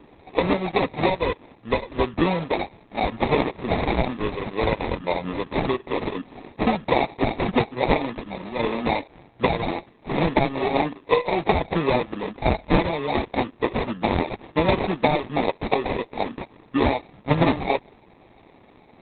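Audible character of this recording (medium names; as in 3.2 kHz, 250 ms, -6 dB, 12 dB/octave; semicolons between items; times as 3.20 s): aliases and images of a low sample rate 1.5 kHz, jitter 0%; Opus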